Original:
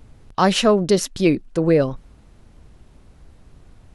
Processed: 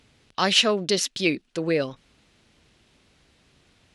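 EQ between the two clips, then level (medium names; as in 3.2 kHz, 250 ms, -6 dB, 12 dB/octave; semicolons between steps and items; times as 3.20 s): frequency weighting D; -7.0 dB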